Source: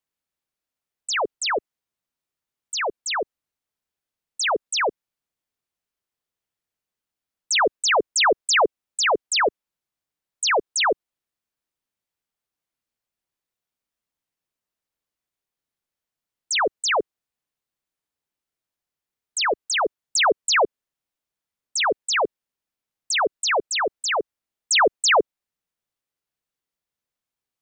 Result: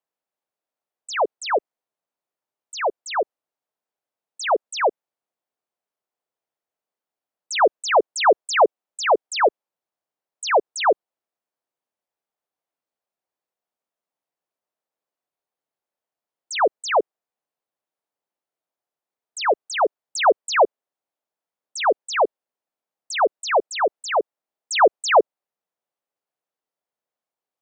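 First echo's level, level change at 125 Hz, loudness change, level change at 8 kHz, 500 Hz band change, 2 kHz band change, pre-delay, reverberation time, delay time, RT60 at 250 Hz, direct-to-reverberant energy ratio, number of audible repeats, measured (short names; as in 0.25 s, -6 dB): none, n/a, +0.5 dB, -7.0 dB, +4.5 dB, -3.0 dB, none, none, none, none, none, none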